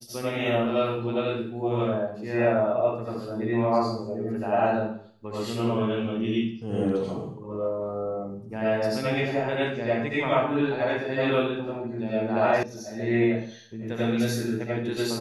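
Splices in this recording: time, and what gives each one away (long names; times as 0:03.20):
0:12.63: cut off before it has died away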